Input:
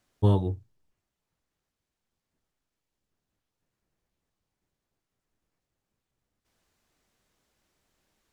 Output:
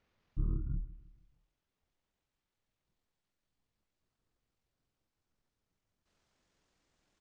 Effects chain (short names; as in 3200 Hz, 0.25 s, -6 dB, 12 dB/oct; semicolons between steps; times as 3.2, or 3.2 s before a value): speed glide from 58% -> 173%; treble ducked by the level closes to 2000 Hz, closed at -23 dBFS; compressor 2:1, threshold -33 dBFS, peak gain reduction 10 dB; pitch shift -10.5 st; feedback echo 0.156 s, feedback 46%, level -19 dB; gain -2 dB